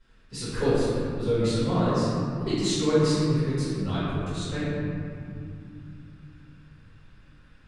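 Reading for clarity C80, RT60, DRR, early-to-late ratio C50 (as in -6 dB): -2.0 dB, 2.7 s, -15.5 dB, -4.5 dB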